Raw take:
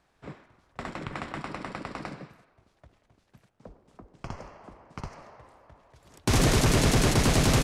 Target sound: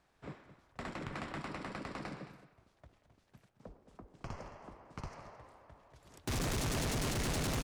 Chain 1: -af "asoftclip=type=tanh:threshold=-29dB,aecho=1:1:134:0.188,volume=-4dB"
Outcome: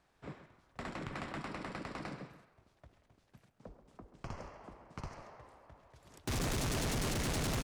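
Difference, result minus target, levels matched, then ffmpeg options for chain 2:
echo 84 ms early
-af "asoftclip=type=tanh:threshold=-29dB,aecho=1:1:218:0.188,volume=-4dB"

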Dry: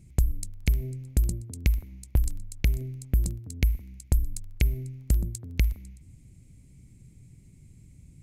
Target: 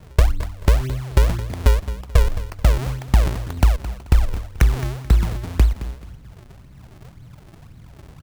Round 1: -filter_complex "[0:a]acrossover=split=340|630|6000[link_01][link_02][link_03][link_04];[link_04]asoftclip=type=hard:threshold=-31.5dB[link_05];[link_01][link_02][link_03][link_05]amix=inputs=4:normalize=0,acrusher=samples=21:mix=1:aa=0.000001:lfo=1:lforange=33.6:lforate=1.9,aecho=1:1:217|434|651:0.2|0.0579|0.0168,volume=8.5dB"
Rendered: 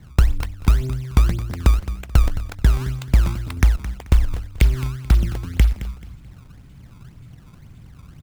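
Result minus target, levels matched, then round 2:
sample-and-hold swept by an LFO: distortion −6 dB
-filter_complex "[0:a]acrossover=split=340|630|6000[link_01][link_02][link_03][link_04];[link_04]asoftclip=type=hard:threshold=-31.5dB[link_05];[link_01][link_02][link_03][link_05]amix=inputs=4:normalize=0,acrusher=samples=52:mix=1:aa=0.000001:lfo=1:lforange=83.2:lforate=1.9,aecho=1:1:217|434|651:0.2|0.0579|0.0168,volume=8.5dB"

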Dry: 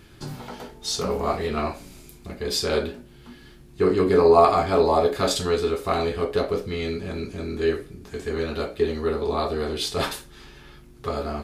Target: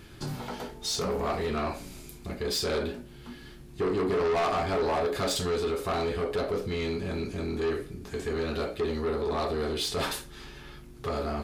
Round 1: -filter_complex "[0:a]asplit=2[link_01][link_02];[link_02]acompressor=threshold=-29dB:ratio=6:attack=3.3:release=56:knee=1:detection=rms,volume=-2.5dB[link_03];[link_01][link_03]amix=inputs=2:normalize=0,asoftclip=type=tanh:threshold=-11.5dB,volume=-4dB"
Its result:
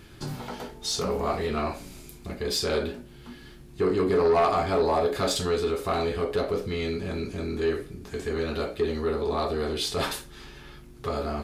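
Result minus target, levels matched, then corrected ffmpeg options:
soft clipping: distortion −7 dB
-filter_complex "[0:a]asplit=2[link_01][link_02];[link_02]acompressor=threshold=-29dB:ratio=6:attack=3.3:release=56:knee=1:detection=rms,volume=-2.5dB[link_03];[link_01][link_03]amix=inputs=2:normalize=0,asoftclip=type=tanh:threshold=-19.5dB,volume=-4dB"

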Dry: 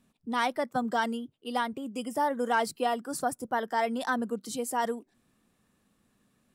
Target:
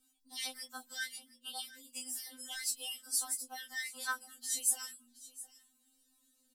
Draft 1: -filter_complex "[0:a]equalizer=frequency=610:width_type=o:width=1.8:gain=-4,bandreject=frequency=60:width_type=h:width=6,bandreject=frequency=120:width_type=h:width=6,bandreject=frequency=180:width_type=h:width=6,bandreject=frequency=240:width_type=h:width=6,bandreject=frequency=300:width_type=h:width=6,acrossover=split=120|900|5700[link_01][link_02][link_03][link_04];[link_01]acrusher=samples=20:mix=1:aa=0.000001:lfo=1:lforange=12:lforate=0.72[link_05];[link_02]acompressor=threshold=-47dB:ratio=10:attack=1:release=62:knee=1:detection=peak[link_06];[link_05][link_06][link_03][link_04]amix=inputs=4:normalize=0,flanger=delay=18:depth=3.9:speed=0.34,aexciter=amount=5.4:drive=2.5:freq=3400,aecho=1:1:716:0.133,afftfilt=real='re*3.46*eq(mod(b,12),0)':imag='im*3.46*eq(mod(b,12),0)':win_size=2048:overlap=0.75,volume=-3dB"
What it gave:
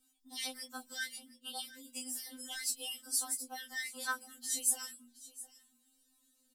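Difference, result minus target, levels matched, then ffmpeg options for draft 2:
downward compressor: peak gain reduction −10 dB; sample-and-hold swept by an LFO: distortion +9 dB
-filter_complex "[0:a]equalizer=frequency=610:width_type=o:width=1.8:gain=-4,bandreject=frequency=60:width_type=h:width=6,bandreject=frequency=120:width_type=h:width=6,bandreject=frequency=180:width_type=h:width=6,bandreject=frequency=240:width_type=h:width=6,bandreject=frequency=300:width_type=h:width=6,acrossover=split=120|900|5700[link_01][link_02][link_03][link_04];[link_01]acrusher=samples=8:mix=1:aa=0.000001:lfo=1:lforange=4.8:lforate=0.72[link_05];[link_02]acompressor=threshold=-58dB:ratio=10:attack=1:release=62:knee=1:detection=peak[link_06];[link_05][link_06][link_03][link_04]amix=inputs=4:normalize=0,flanger=delay=18:depth=3.9:speed=0.34,aexciter=amount=5.4:drive=2.5:freq=3400,aecho=1:1:716:0.133,afftfilt=real='re*3.46*eq(mod(b,12),0)':imag='im*3.46*eq(mod(b,12),0)':win_size=2048:overlap=0.75,volume=-3dB"

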